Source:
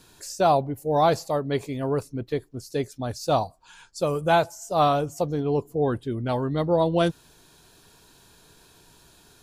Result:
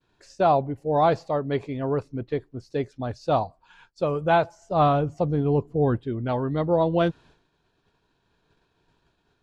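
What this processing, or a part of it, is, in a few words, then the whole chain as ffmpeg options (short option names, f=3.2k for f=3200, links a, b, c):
hearing-loss simulation: -filter_complex "[0:a]asettb=1/sr,asplit=3[a][b][c];[a]atrim=end=4.614[d];[b]atrim=start=4.61:end=5.96,asetpts=PTS-STARTPTS,afade=t=in:d=0.004:c=qsin,afade=t=out:st=1.346:d=0.004:c=qsin,bass=f=250:g=6,treble=f=4k:g=-2[e];[c]atrim=start=5.956[f];[d][e]acrossfade=d=0.004:c1=hsin:c2=qsin[g];[g][f]acrossfade=d=0.004:c1=qsin:c2=hsin,lowpass=2.9k,agate=range=-33dB:threshold=-48dB:ratio=3:detection=peak"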